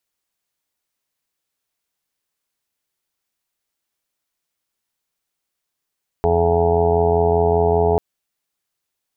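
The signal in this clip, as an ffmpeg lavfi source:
ffmpeg -f lavfi -i "aevalsrc='0.0891*sin(2*PI*85.1*t)+0.0501*sin(2*PI*170.2*t)+0.0224*sin(2*PI*255.3*t)+0.0224*sin(2*PI*340.4*t)+0.158*sin(2*PI*425.5*t)+0.0178*sin(2*PI*510.6*t)+0.0251*sin(2*PI*595.7*t)+0.0841*sin(2*PI*680.8*t)+0.0562*sin(2*PI*765.9*t)+0.0531*sin(2*PI*851*t)+0.0282*sin(2*PI*936.1*t)':duration=1.74:sample_rate=44100" out.wav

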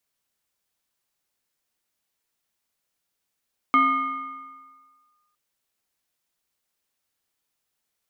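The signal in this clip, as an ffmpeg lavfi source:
ffmpeg -f lavfi -i "aevalsrc='0.224*pow(10,-3*t/1.62)*sin(2*PI*1220*t+0.69*clip(1-t/1.55,0,1)*sin(2*PI*0.78*1220*t))':duration=1.61:sample_rate=44100" out.wav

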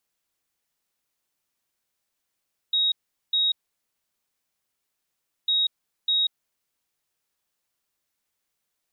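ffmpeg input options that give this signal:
ffmpeg -f lavfi -i "aevalsrc='0.112*sin(2*PI*3780*t)*clip(min(mod(mod(t,2.75),0.6),0.19-mod(mod(t,2.75),0.6))/0.005,0,1)*lt(mod(t,2.75),1.2)':duration=5.5:sample_rate=44100" out.wav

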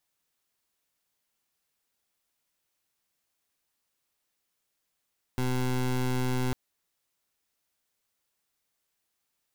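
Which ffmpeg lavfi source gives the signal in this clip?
ffmpeg -f lavfi -i "aevalsrc='0.0422*(2*lt(mod(127*t,1),0.21)-1)':duration=1.15:sample_rate=44100" out.wav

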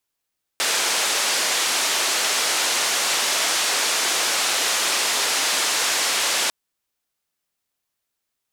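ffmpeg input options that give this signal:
ffmpeg -f lavfi -i "anoisesrc=color=white:duration=5.9:sample_rate=44100:seed=1,highpass=frequency=420,lowpass=frequency=7400,volume=-11.9dB" out.wav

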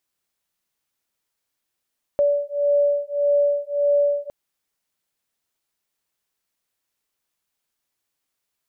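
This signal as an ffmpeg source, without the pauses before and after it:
ffmpeg -f lavfi -i "aevalsrc='0.1*(sin(2*PI*575*t)+sin(2*PI*576.7*t))':duration=2.11:sample_rate=44100" out.wav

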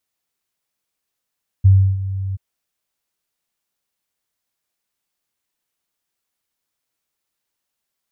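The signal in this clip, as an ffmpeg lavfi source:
ffmpeg -f lavfi -i "aevalsrc='0.531*sin(2*PI*96.3*t)':duration=0.731:sample_rate=44100,afade=type=in:duration=0.017,afade=type=out:start_time=0.017:duration=0.313:silence=0.178,afade=type=out:start_time=0.71:duration=0.021" out.wav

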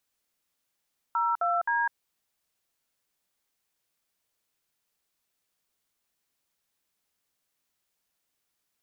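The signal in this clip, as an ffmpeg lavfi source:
ffmpeg -f lavfi -i "aevalsrc='0.0501*clip(min(mod(t,0.262),0.203-mod(t,0.262))/0.002,0,1)*(eq(floor(t/0.262),0)*(sin(2*PI*941*mod(t,0.262))+sin(2*PI*1336*mod(t,0.262)))+eq(floor(t/0.262),1)*(sin(2*PI*697*mod(t,0.262))+sin(2*PI*1336*mod(t,0.262)))+eq(floor(t/0.262),2)*(sin(2*PI*941*mod(t,0.262))+sin(2*PI*1633*mod(t,0.262))))':duration=0.786:sample_rate=44100" out.wav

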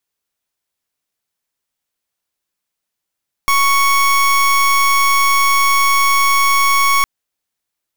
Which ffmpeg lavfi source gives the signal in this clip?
ffmpeg -f lavfi -i "aevalsrc='0.237*(2*lt(mod(1110*t,1),0.28)-1)':duration=3.56:sample_rate=44100" out.wav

